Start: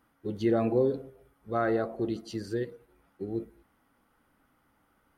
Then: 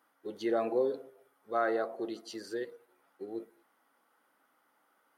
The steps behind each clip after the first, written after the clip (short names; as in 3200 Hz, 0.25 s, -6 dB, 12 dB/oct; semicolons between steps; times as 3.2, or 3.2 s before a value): HPF 460 Hz 12 dB/oct; bell 2500 Hz -3 dB 0.53 oct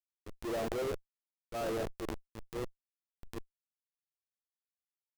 Schmitt trigger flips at -33.5 dBFS; transient shaper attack -7 dB, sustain +10 dB; dynamic EQ 510 Hz, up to +7 dB, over -52 dBFS, Q 0.82; gain -2 dB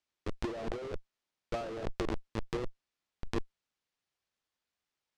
LPF 5300 Hz 12 dB/oct; negative-ratio compressor -40 dBFS, ratio -0.5; gain +7 dB